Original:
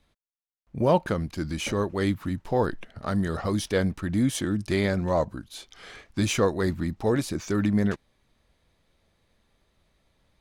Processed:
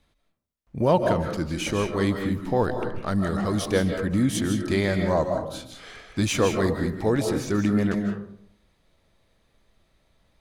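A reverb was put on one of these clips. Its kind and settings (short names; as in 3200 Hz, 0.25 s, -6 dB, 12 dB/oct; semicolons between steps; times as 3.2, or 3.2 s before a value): digital reverb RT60 0.69 s, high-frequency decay 0.4×, pre-delay 0.115 s, DRR 4.5 dB; gain +1 dB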